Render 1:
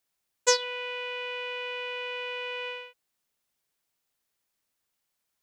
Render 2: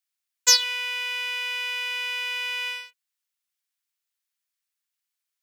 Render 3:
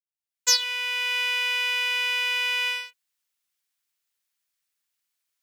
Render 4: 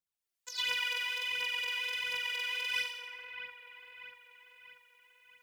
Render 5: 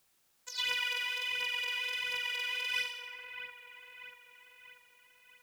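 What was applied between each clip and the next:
waveshaping leveller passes 2; dynamic bell 5.3 kHz, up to +6 dB, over -36 dBFS, Q 1; high-pass 1.5 kHz 12 dB/octave
fade-in on the opening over 1.19 s; trim +4 dB
phaser 1.4 Hz, delay 3.1 ms, feedback 67%; compressor with a negative ratio -29 dBFS, ratio -1; two-band feedback delay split 2.7 kHz, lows 638 ms, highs 85 ms, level -7 dB; trim -7.5 dB
added noise white -72 dBFS

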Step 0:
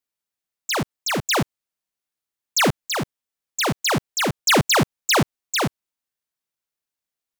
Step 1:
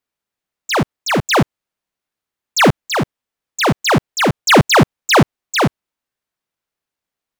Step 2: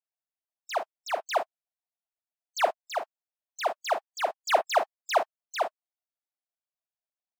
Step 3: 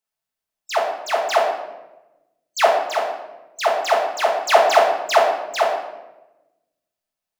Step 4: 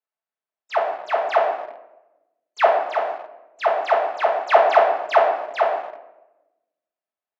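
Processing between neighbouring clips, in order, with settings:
treble shelf 3.8 kHz -10 dB; trim +8.5 dB
harmonic-percussive separation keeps percussive; ladder high-pass 620 Hz, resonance 70%; trim -6.5 dB
simulated room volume 440 m³, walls mixed, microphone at 1.5 m; trim +6.5 dB
in parallel at -10 dB: bit crusher 5-bit; on the sum: band-pass 320–2100 Hz; trim -2.5 dB

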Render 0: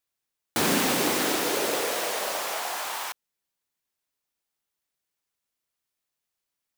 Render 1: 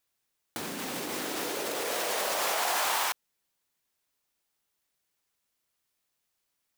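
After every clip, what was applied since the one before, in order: compressor with a negative ratio -32 dBFS, ratio -1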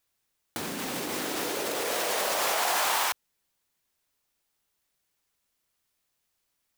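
bass shelf 91 Hz +5.5 dB; trim +2 dB

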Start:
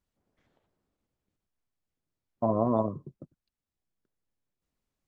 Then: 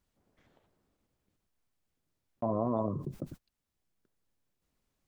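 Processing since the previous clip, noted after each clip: gate -59 dBFS, range -29 dB; level flattener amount 70%; trim -6.5 dB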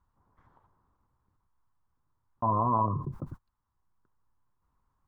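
FFT filter 110 Hz 0 dB, 190 Hz -8 dB, 650 Hz -11 dB, 1 kHz +8 dB, 2.5 kHz -19 dB; trim +7.5 dB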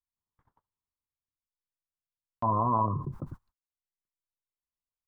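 gate -60 dBFS, range -29 dB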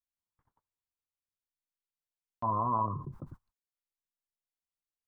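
dynamic bell 1.3 kHz, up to +5 dB, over -39 dBFS, Q 1.6; trim -6 dB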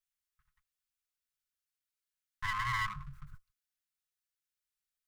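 comb filter that takes the minimum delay 4.7 ms; elliptic band-stop 130–1300 Hz, stop band 40 dB; trim +4.5 dB

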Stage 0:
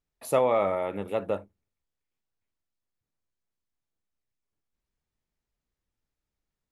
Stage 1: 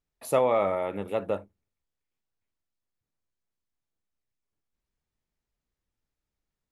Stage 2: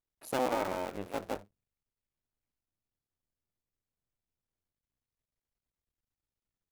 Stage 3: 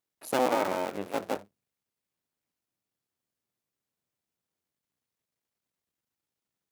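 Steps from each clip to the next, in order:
no audible change
cycle switcher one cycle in 2, muted; trim -5 dB
high-pass 150 Hz 12 dB/octave; trim +5 dB

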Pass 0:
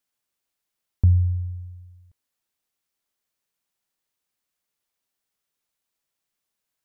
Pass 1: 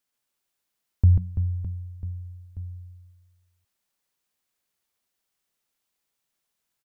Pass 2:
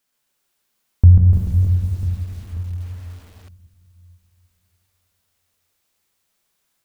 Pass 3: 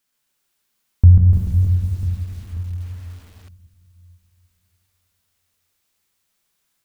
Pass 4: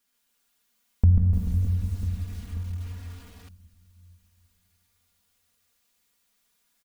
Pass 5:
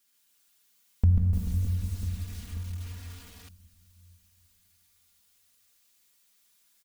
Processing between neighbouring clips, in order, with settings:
reverse bouncing-ball echo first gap 140 ms, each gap 1.4×, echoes 5
plate-style reverb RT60 3.5 s, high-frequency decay 0.85×, DRR 1 dB; bit-crushed delay 296 ms, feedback 35%, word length 8-bit, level -8 dB; trim +7 dB
peaking EQ 580 Hz -3.5 dB 1.6 oct
comb 4.2 ms, depth 84%; in parallel at -1 dB: compression, threshold -24 dBFS, peak gain reduction 15.5 dB; on the sum: trim -8 dB
treble shelf 2.1 kHz +9 dB; trim -3.5 dB

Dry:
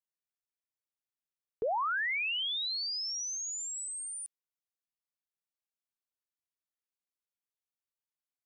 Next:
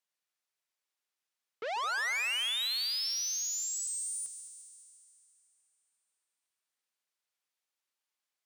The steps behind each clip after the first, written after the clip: valve stage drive 41 dB, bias 0.4; frequency weighting A; multi-head delay 71 ms, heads second and third, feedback 64%, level -13 dB; trim +8 dB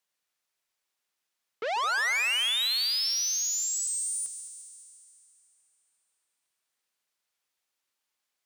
hum notches 50/100/150 Hz; trim +5.5 dB

